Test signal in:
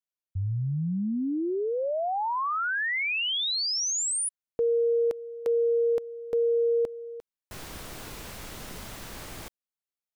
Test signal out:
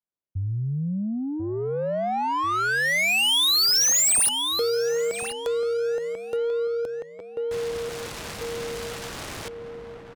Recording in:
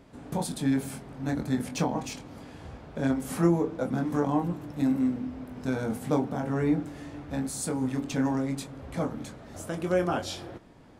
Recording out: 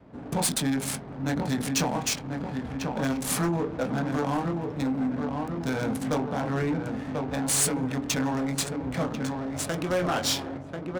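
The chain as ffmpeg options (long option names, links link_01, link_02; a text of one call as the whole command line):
ffmpeg -i in.wav -filter_complex "[0:a]highpass=frequency=84:poles=1,asplit=2[link_01][link_02];[link_02]adelay=1040,lowpass=frequency=3200:poles=1,volume=-7dB,asplit=2[link_03][link_04];[link_04]adelay=1040,lowpass=frequency=3200:poles=1,volume=0.51,asplit=2[link_05][link_06];[link_06]adelay=1040,lowpass=frequency=3200:poles=1,volume=0.51,asplit=2[link_07][link_08];[link_08]adelay=1040,lowpass=frequency=3200:poles=1,volume=0.51,asplit=2[link_09][link_10];[link_10]adelay=1040,lowpass=frequency=3200:poles=1,volume=0.51,asplit=2[link_11][link_12];[link_12]adelay=1040,lowpass=frequency=3200:poles=1,volume=0.51[link_13];[link_01][link_03][link_05][link_07][link_09][link_11][link_13]amix=inputs=7:normalize=0,asplit=2[link_14][link_15];[link_15]acompressor=threshold=-35dB:ratio=6:attack=96:release=99:knee=6:detection=peak,volume=-0.5dB[link_16];[link_14][link_16]amix=inputs=2:normalize=0,crystalizer=i=4:c=0,acrossover=split=490[link_17][link_18];[link_18]adynamicsmooth=sensitivity=5:basefreq=970[link_19];[link_17][link_19]amix=inputs=2:normalize=0,asoftclip=type=tanh:threshold=-18dB,adynamicequalizer=threshold=0.01:dfrequency=320:dqfactor=1.4:tfrequency=320:tqfactor=1.4:attack=5:release=100:ratio=0.375:range=2:mode=cutabove:tftype=bell" out.wav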